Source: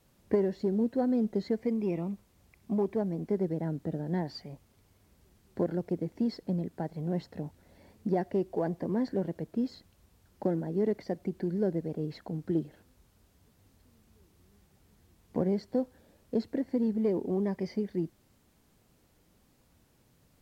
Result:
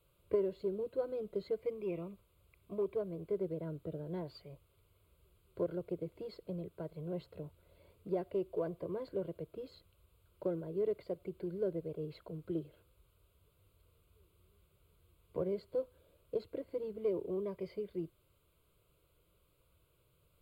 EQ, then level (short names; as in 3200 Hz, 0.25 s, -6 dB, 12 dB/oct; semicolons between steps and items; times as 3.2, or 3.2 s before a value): fixed phaser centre 1200 Hz, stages 8; -3.0 dB